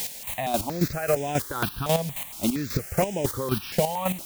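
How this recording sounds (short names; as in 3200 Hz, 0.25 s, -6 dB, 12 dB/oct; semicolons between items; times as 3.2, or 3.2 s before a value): a quantiser's noise floor 6-bit, dither triangular; chopped level 3.7 Hz, depth 65%, duty 25%; notches that jump at a steady rate 4.3 Hz 330–4300 Hz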